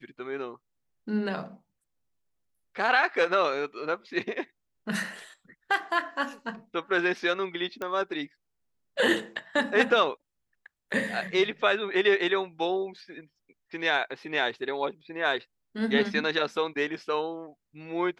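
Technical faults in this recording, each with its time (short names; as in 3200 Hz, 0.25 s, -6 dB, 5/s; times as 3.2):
7.82 pop -20 dBFS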